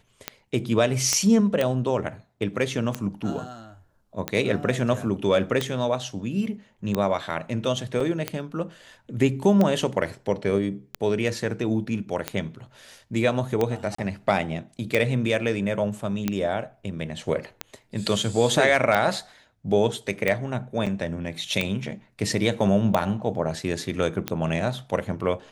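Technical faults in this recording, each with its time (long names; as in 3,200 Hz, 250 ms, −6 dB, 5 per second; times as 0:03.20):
scratch tick 45 rpm −10 dBFS
0:01.13: click −7 dBFS
0:08.00: drop-out 4.6 ms
0:13.95–0:13.98: drop-out 34 ms
0:20.86–0:20.87: drop-out 6.6 ms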